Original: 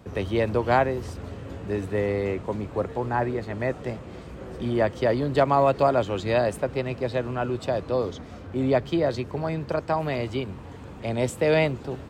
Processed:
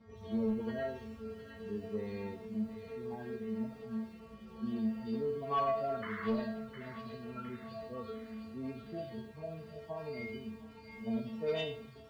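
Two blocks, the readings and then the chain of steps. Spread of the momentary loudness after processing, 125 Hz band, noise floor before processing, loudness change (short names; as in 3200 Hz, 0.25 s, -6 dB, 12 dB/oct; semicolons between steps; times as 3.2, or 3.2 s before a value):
11 LU, -18.0 dB, -41 dBFS, -13.5 dB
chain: median-filter separation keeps harmonic; LPF 5400 Hz 24 dB/oct; low shelf 420 Hz +5 dB; metallic resonator 220 Hz, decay 0.6 s, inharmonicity 0.002; in parallel at -9 dB: sine folder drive 6 dB, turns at -27 dBFS; on the sum: painted sound noise, 6.02–6.28, 970–2200 Hz -45 dBFS; on a send: thin delay 0.709 s, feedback 52%, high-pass 1800 Hz, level -6 dB; on the sum: lo-fi delay 80 ms, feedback 35%, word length 10-bit, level -12.5 dB; gain +1 dB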